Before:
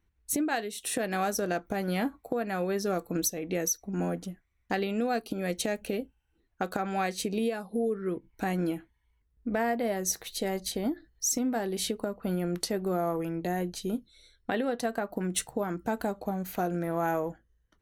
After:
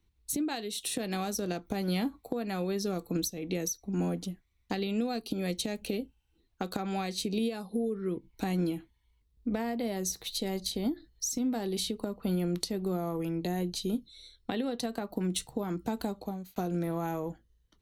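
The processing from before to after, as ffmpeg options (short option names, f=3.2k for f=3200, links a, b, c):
-filter_complex "[0:a]asplit=2[a][b];[a]atrim=end=16.56,asetpts=PTS-STARTPTS,afade=t=out:st=15.93:d=0.63:c=qsin[c];[b]atrim=start=16.56,asetpts=PTS-STARTPTS,afade=t=in:d=0.004:c=hsin[d];[c][d]concat=n=2:v=0:a=1,equalizer=f=630:t=o:w=0.67:g=-5,equalizer=f=1.6k:t=o:w=0.67:g=-8,equalizer=f=4k:t=o:w=0.67:g=7,acrossover=split=240[e][f];[f]acompressor=threshold=-33dB:ratio=6[g];[e][g]amix=inputs=2:normalize=0,volume=1.5dB"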